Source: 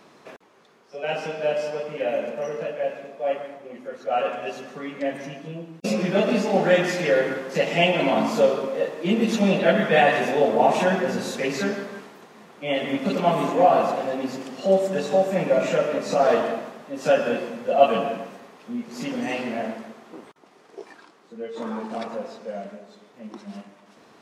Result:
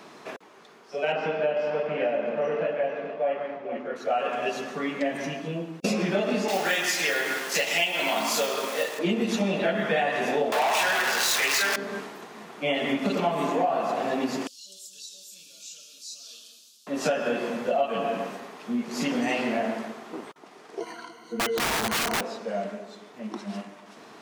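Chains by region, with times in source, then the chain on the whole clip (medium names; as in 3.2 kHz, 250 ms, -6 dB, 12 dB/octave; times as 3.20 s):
1.12–3.96 s: low-pass 2.7 kHz + delay 444 ms -13 dB
6.48–8.99 s: companding laws mixed up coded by A + tilt EQ +4 dB/octave
10.52–11.76 s: jump at every zero crossing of -21.5 dBFS + high-pass 1.1 kHz + waveshaping leveller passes 3
14.47–16.87 s: inverse Chebyshev high-pass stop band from 2.1 kHz + compression 1.5:1, threshold -51 dBFS
20.80–22.21 s: rippled EQ curve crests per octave 1.9, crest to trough 16 dB + integer overflow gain 24 dB
whole clip: bass shelf 110 Hz -11 dB; band-stop 530 Hz, Q 12; compression, threshold -28 dBFS; trim +5.5 dB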